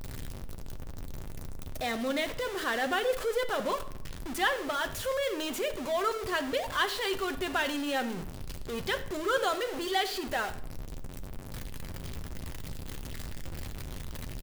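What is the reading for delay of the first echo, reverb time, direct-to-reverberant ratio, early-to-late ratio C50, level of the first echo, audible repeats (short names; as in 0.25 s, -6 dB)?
87 ms, 0.70 s, 8.0 dB, 13.0 dB, -19.0 dB, 1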